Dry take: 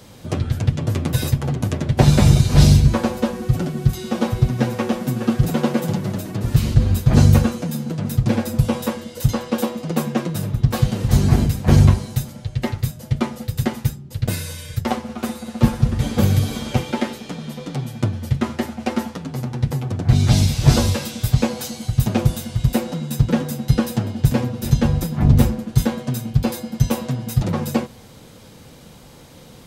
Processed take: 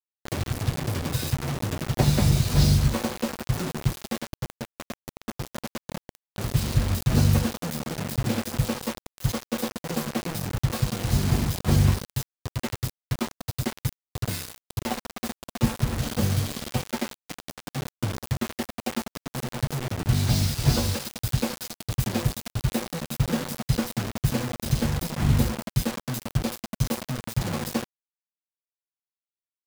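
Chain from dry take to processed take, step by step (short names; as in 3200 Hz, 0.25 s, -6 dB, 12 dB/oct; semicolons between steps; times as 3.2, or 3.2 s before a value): dynamic EQ 4700 Hz, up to +5 dB, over -50 dBFS, Q 3.3; 4.18–6.38 resonator 190 Hz, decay 0.38 s, harmonics odd, mix 70%; bit-crush 4-bit; gain -8 dB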